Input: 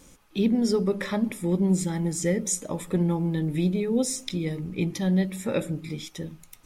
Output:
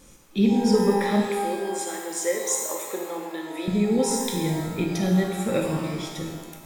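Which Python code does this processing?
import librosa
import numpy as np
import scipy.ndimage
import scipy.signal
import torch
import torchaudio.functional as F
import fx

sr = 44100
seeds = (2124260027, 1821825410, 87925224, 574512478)

y = fx.highpass(x, sr, hz=390.0, slope=24, at=(1.2, 3.68))
y = fx.rev_shimmer(y, sr, seeds[0], rt60_s=1.3, semitones=12, shimmer_db=-8, drr_db=0.5)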